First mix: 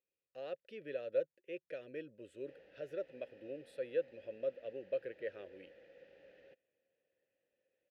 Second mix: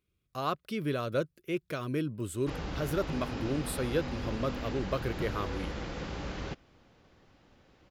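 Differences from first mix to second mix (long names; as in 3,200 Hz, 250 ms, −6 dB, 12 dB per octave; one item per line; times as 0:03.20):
background +11.5 dB
master: remove formant filter e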